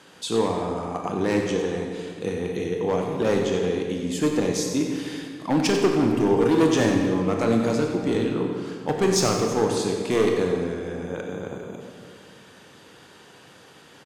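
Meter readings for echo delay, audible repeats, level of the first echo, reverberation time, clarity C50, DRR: 93 ms, 1, -10.5 dB, 2.0 s, 2.5 dB, 1.0 dB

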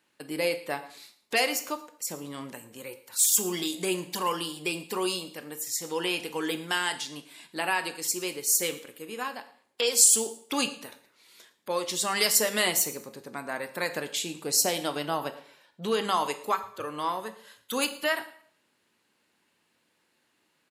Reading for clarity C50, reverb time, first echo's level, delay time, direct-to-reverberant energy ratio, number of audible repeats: 13.5 dB, 0.55 s, -21.0 dB, 112 ms, 8.5 dB, 2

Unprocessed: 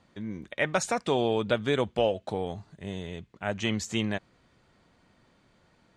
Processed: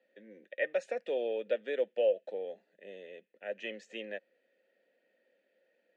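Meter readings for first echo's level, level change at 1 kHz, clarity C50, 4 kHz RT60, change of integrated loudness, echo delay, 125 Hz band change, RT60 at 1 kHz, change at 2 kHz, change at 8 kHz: no echo, -16.5 dB, no reverb, no reverb, -5.5 dB, no echo, under -30 dB, no reverb, -8.0 dB, under -25 dB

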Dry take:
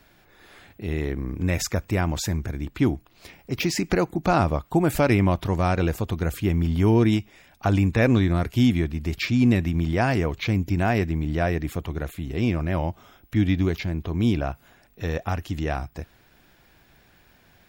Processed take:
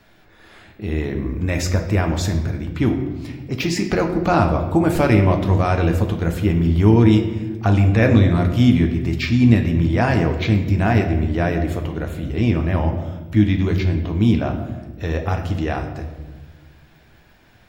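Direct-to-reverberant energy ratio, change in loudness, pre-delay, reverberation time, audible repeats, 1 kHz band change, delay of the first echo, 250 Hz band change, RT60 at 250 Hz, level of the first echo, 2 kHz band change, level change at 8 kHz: 4.0 dB, +5.0 dB, 9 ms, 1.3 s, no echo, +4.0 dB, no echo, +5.5 dB, 1.9 s, no echo, +3.5 dB, no reading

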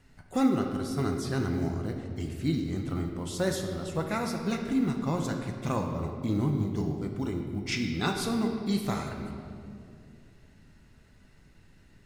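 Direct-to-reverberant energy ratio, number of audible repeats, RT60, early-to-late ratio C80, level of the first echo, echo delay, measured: 3.0 dB, no echo, 2.5 s, 6.0 dB, no echo, no echo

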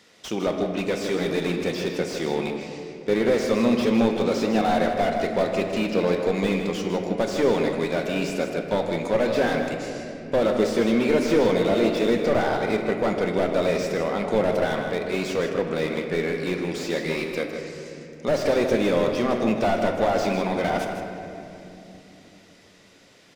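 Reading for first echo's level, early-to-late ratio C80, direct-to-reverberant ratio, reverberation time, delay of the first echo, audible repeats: -8.5 dB, 4.0 dB, 2.5 dB, 3.0 s, 157 ms, 1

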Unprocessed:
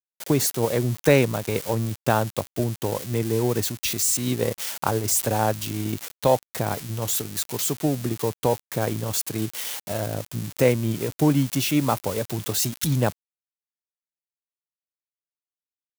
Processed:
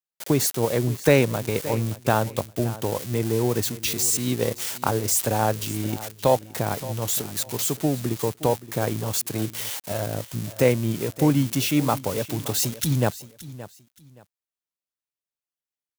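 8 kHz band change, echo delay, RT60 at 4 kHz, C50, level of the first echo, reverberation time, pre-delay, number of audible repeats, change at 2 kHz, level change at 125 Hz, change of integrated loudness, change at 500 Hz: 0.0 dB, 572 ms, no reverb, no reverb, -16.5 dB, no reverb, no reverb, 2, 0.0 dB, 0.0 dB, 0.0 dB, 0.0 dB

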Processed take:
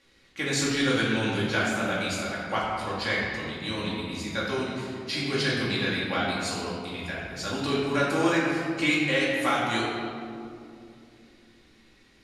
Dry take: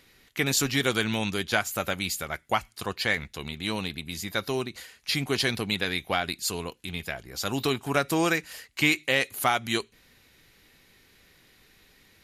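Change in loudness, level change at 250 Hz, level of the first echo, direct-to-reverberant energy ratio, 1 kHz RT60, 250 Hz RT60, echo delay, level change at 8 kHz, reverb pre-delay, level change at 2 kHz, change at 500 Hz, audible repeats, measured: +0.5 dB, +3.0 dB, no echo, -7.5 dB, 2.3 s, 3.9 s, no echo, -4.0 dB, 4 ms, +0.5 dB, +1.5 dB, no echo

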